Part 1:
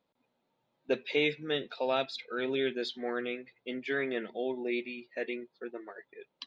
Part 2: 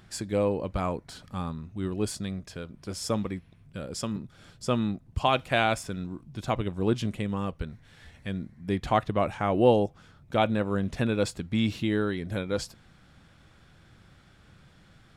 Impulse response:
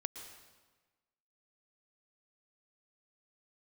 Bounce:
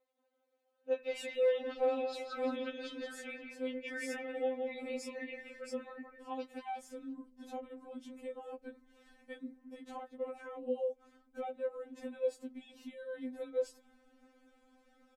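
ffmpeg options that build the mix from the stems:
-filter_complex "[0:a]highpass=630,alimiter=level_in=7dB:limit=-24dB:level=0:latency=1:release=18,volume=-7dB,volume=-1.5dB,asplit=2[a][b];[b]volume=-5dB[c];[1:a]acompressor=threshold=-30dB:ratio=6,alimiter=level_in=1.5dB:limit=-24dB:level=0:latency=1,volume=-1.5dB,adelay=1050,volume=-8dB[d];[c]aecho=0:1:172|344|516|688|860|1032:1|0.43|0.185|0.0795|0.0342|0.0147[e];[a][d][e]amix=inputs=3:normalize=0,equalizer=f=250:t=o:w=1:g=4,equalizer=f=500:t=o:w=1:g=8,equalizer=f=4k:t=o:w=1:g=-6,afftfilt=real='re*3.46*eq(mod(b,12),0)':imag='im*3.46*eq(mod(b,12),0)':win_size=2048:overlap=0.75"

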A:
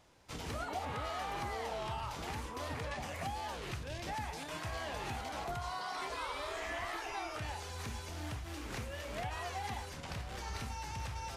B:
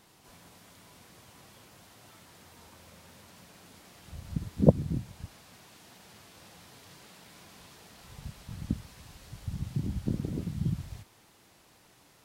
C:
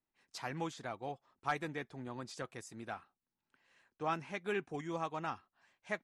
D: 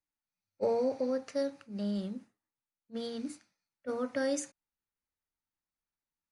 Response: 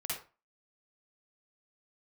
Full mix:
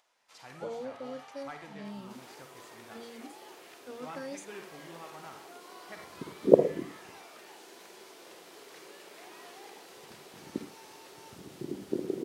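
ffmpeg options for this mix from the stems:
-filter_complex "[0:a]highpass=710,acompressor=mode=upward:threshold=-57dB:ratio=2.5,volume=-13dB,asplit=2[a][b];[b]volume=-7dB[c];[1:a]highpass=f=380:t=q:w=4.6,adelay=1850,volume=-3.5dB,asplit=2[d][e];[e]volume=-5.5dB[f];[2:a]volume=-12.5dB,asplit=2[g][h];[h]volume=-3.5dB[i];[3:a]volume=-9.5dB,asplit=2[j][k];[k]apad=whole_len=621668[l];[d][l]sidechaincompress=threshold=-44dB:ratio=8:attack=16:release=308[m];[4:a]atrim=start_sample=2205[n];[c][f][i]amix=inputs=3:normalize=0[o];[o][n]afir=irnorm=-1:irlink=0[p];[a][m][g][j][p]amix=inputs=5:normalize=0"

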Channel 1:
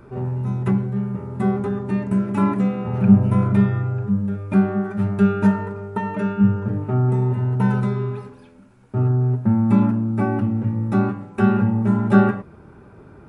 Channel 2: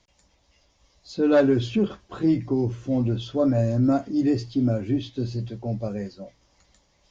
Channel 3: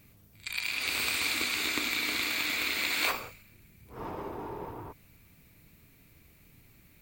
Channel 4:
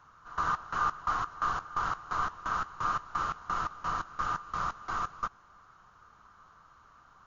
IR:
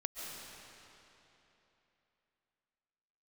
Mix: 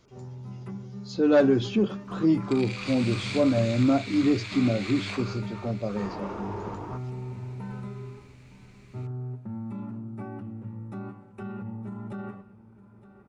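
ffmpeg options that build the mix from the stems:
-filter_complex "[0:a]bandreject=f=1.6k:w=16,alimiter=limit=-13dB:level=0:latency=1,volume=-16dB,asplit=2[a][b];[b]volume=-17dB[c];[1:a]highpass=120,acontrast=39,volume=-6dB,asplit=2[d][e];[2:a]acompressor=threshold=-38dB:ratio=2,lowpass=f=7.4k:w=0.5412,lowpass=f=7.4k:w=1.3066,acontrast=76,adelay=2050,volume=-2dB,asplit=2[f][g];[g]volume=-22dB[h];[3:a]acrusher=bits=10:mix=0:aa=0.000001,adelay=1700,volume=-17dB[i];[e]apad=whole_len=399884[j];[f][j]sidechaincompress=threshold=-26dB:ratio=8:attack=16:release=1030[k];[c][h]amix=inputs=2:normalize=0,aecho=0:1:914:1[l];[a][d][k][i][l]amix=inputs=5:normalize=0"

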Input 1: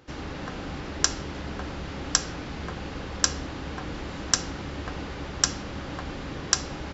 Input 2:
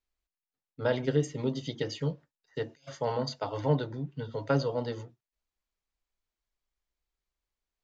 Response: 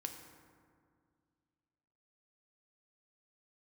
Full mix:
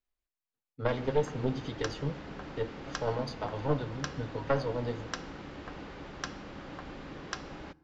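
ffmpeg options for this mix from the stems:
-filter_complex "[0:a]acrossover=split=4800[a][b];[b]acompressor=threshold=-53dB:ratio=4:attack=1:release=60[c];[a][c]amix=inputs=2:normalize=0,equalizer=f=80:t=o:w=1.2:g=-7.5,adelay=800,volume=-8dB,asplit=2[d][e];[e]volume=-15dB[f];[1:a]flanger=delay=7.8:depth=1.7:regen=48:speed=1.4:shape=triangular,aeval=exprs='0.141*(cos(1*acos(clip(val(0)/0.141,-1,1)))-cos(1*PI/2))+0.0708*(cos(2*acos(clip(val(0)/0.141,-1,1)))-cos(2*PI/2))':c=same,volume=0dB,asplit=2[g][h];[h]volume=-8dB[i];[2:a]atrim=start_sample=2205[j];[f][i]amix=inputs=2:normalize=0[k];[k][j]afir=irnorm=-1:irlink=0[l];[d][g][l]amix=inputs=3:normalize=0,highshelf=f=4.6k:g=-8.5"

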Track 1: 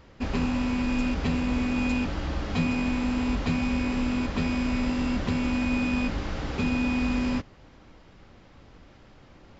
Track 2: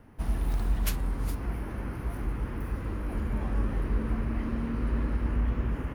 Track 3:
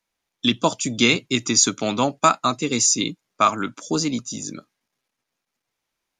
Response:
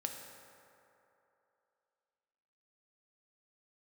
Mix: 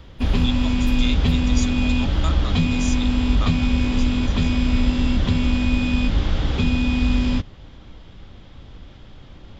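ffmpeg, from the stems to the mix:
-filter_complex "[0:a]lowshelf=f=160:g=11,acrossover=split=180|3000[a][b][c];[b]acompressor=threshold=-26dB:ratio=6[d];[a][d][c]amix=inputs=3:normalize=0,volume=3dB[e];[1:a]volume=-5.5dB[f];[2:a]highpass=440,volume=-17dB,asplit=2[g][h];[h]apad=whole_len=262060[i];[f][i]sidechaincompress=threshold=-50dB:ratio=8:attack=9.7:release=161[j];[e][j][g]amix=inputs=3:normalize=0,equalizer=f=3.4k:w=3.5:g=11"

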